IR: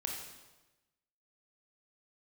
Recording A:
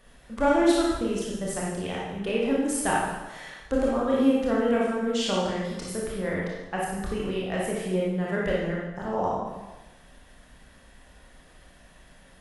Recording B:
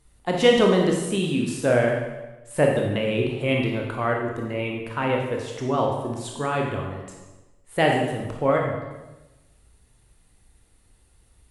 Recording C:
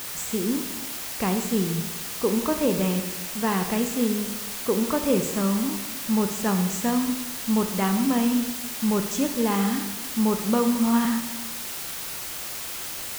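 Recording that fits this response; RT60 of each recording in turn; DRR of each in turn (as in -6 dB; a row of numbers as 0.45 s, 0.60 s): B; 1.1 s, 1.1 s, 1.1 s; -5.0 dB, 0.0 dB, 5.5 dB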